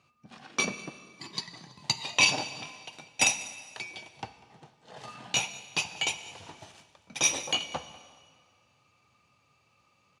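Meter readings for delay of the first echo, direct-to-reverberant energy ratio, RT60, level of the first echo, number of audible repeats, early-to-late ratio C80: 195 ms, 11.5 dB, 1.9 s, −21.0 dB, 1, 13.5 dB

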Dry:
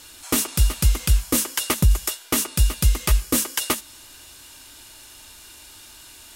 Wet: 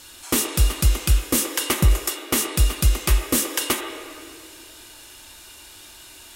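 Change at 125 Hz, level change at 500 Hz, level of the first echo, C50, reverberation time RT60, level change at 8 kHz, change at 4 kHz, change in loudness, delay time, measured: 0.0 dB, +3.0 dB, no echo audible, 8.5 dB, 2.2 s, 0.0 dB, +1.0 dB, +0.5 dB, no echo audible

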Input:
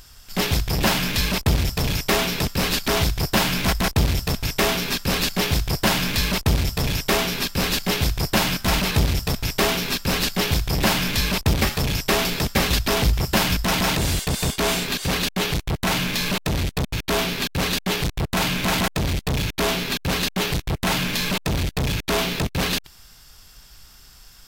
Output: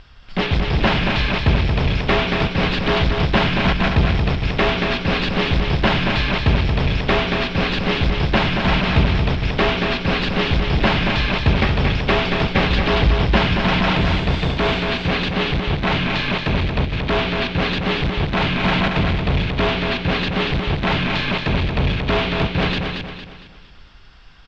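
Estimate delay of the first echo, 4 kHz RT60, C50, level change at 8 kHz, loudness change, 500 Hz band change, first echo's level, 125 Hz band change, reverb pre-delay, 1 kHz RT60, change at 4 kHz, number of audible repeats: 229 ms, no reverb audible, no reverb audible, below −15 dB, +3.0 dB, +4.5 dB, −5.0 dB, +4.5 dB, no reverb audible, no reverb audible, +0.5 dB, 4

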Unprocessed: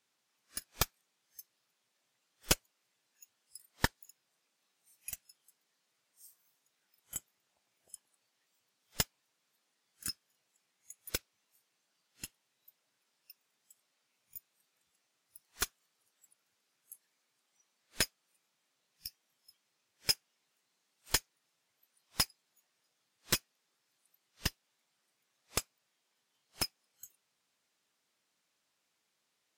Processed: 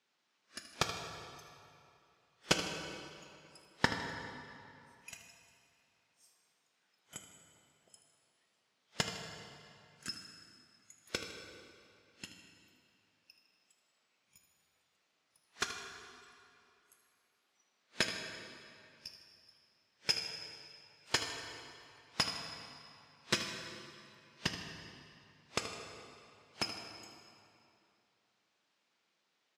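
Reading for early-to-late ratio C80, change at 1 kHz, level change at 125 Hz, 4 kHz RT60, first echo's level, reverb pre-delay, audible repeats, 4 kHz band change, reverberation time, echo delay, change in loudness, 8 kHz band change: 5.5 dB, +3.5 dB, −1.5 dB, 2.1 s, −12.0 dB, 4 ms, 1, +0.5 dB, 2.7 s, 78 ms, −2.5 dB, −5.5 dB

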